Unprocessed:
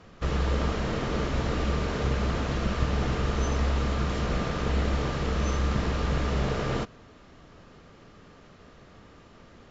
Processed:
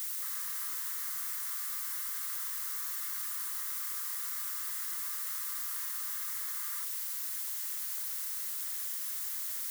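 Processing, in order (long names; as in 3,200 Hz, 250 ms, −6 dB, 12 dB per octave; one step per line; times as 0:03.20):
background noise pink −38 dBFS
brick-wall band-pass 940–2,200 Hz
in parallel at −2 dB: speech leveller within 4 dB
on the sum: bit-depth reduction 6 bits, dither triangular
first difference
level −4 dB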